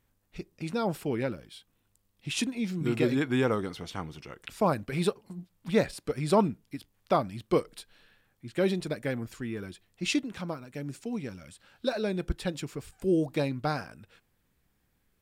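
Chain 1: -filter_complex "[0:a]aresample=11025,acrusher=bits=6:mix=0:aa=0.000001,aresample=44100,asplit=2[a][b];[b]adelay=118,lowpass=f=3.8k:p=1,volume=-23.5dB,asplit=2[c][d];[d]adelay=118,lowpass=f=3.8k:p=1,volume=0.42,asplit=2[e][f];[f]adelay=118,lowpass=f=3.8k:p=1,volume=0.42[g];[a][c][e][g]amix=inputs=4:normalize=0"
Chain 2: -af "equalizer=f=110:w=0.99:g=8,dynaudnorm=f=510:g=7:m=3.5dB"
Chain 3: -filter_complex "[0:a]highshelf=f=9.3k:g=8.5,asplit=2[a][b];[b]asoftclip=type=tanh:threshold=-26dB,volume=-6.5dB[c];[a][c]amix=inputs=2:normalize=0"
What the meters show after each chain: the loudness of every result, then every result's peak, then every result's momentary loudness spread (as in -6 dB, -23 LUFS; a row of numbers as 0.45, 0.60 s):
-30.5, -26.0, -28.5 LUFS; -11.5, -6.0, -10.5 dBFS; 17, 17, 17 LU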